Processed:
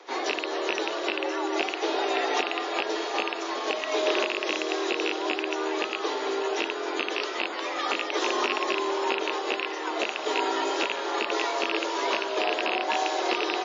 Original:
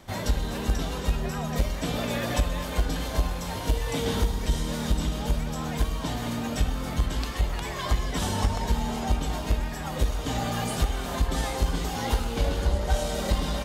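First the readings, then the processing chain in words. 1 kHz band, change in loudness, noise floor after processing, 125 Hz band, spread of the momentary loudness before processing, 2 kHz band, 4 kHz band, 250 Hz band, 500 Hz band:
+5.5 dB, +1.0 dB, -33 dBFS, under -40 dB, 3 LU, +7.5 dB, +5.0 dB, -2.0 dB, +5.5 dB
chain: rattling part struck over -24 dBFS, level -15 dBFS; HPF 170 Hz 24 dB/oct; frequency shift +160 Hz; air absorption 63 m; split-band echo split 670 Hz, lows 0.384 s, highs 0.598 s, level -15 dB; gain +3.5 dB; WMA 32 kbps 16000 Hz

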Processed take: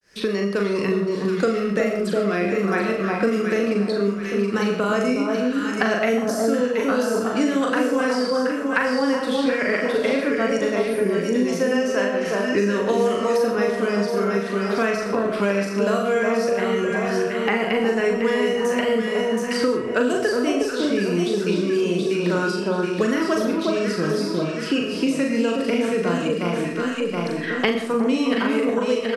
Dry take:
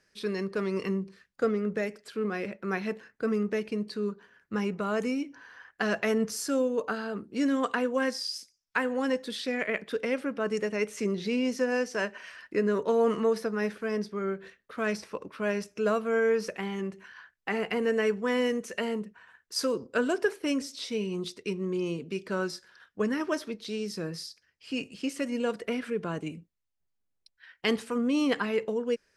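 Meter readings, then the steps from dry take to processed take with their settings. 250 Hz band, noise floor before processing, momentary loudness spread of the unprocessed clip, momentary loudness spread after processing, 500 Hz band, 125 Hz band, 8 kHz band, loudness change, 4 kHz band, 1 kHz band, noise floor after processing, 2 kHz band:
+9.5 dB, -78 dBFS, 9 LU, 3 LU, +9.5 dB, +10.0 dB, +6.5 dB, +9.0 dB, +8.0 dB, +10.0 dB, -27 dBFS, +9.0 dB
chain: opening faded in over 1.12 s; spectral gain 10.77–11.48, 1200–9000 Hz -29 dB; vibrato 0.7 Hz 59 cents; doubler 40 ms -3 dB; on a send: echo with dull and thin repeats by turns 0.362 s, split 1200 Hz, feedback 60%, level -2.5 dB; on the sum: digital reverb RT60 0.49 s, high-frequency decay 0.5×, pre-delay 40 ms, DRR 7 dB; three-band squash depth 100%; gain +4 dB

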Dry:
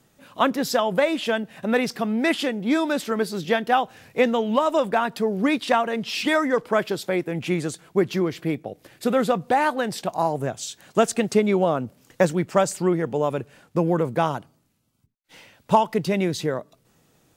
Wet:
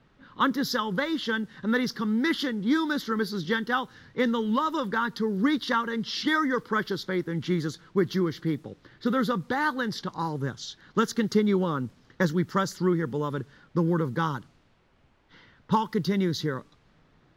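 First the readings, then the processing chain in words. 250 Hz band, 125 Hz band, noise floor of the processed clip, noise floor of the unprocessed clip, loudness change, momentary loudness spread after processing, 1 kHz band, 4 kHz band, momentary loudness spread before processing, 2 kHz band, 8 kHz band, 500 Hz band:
-2.0 dB, -0.5 dB, -63 dBFS, -64 dBFS, -4.0 dB, 7 LU, -6.0 dB, -2.0 dB, 7 LU, -2.0 dB, -8.5 dB, -8.0 dB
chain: fixed phaser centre 2500 Hz, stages 6; added noise pink -63 dBFS; low-pass opened by the level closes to 2700 Hz, open at -24 dBFS

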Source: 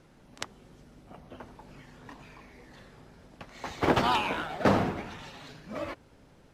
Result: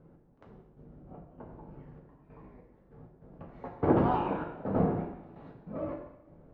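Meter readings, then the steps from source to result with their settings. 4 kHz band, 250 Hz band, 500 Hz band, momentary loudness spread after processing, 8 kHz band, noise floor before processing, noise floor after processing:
under -20 dB, +1.0 dB, -1.0 dB, 24 LU, under -30 dB, -58 dBFS, -61 dBFS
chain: Bessel low-pass 590 Hz, order 2; step gate "x..x.xxx.xxxx..x" 98 bpm -12 dB; two-slope reverb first 0.74 s, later 3 s, from -22 dB, DRR -0.5 dB

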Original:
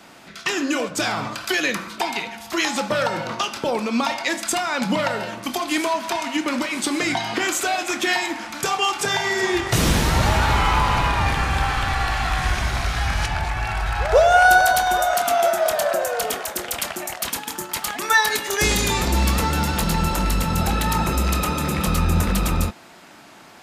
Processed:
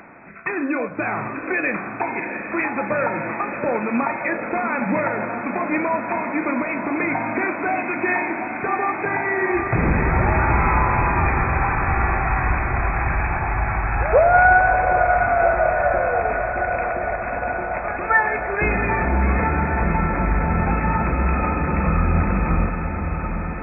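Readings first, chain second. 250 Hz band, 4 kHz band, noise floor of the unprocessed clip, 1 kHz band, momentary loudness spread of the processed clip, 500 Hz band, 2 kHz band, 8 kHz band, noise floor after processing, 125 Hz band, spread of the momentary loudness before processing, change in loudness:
+1.5 dB, under -40 dB, -45 dBFS, +1.5 dB, 8 LU, +1.5 dB, +1.0 dB, under -40 dB, -29 dBFS, +1.5 dB, 8 LU, +0.5 dB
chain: upward compressor, threshold -38 dBFS; brick-wall FIR low-pass 2600 Hz; diffused feedback echo 0.745 s, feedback 76%, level -8 dB

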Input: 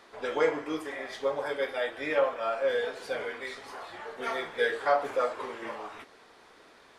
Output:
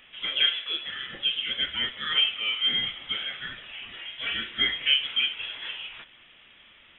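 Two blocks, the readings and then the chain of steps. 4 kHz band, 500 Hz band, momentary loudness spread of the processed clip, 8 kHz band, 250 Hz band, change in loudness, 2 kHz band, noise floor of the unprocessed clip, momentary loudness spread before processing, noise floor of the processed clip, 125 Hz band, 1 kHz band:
+21.0 dB, -21.0 dB, 14 LU, under -25 dB, -7.5 dB, +5.0 dB, +4.0 dB, -57 dBFS, 14 LU, -55 dBFS, n/a, -11.0 dB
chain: inverted band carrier 3700 Hz; gain +2 dB

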